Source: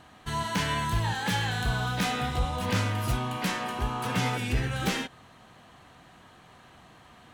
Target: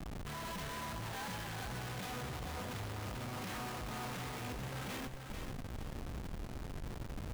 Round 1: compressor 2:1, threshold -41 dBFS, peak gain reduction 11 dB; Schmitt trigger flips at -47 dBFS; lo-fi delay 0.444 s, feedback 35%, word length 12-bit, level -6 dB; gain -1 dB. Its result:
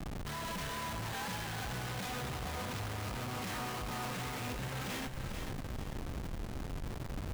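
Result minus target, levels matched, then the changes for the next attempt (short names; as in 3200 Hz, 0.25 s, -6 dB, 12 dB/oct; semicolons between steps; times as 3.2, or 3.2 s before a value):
compressor: peak gain reduction -3 dB
change: compressor 2:1, threshold -47 dBFS, peak gain reduction 14 dB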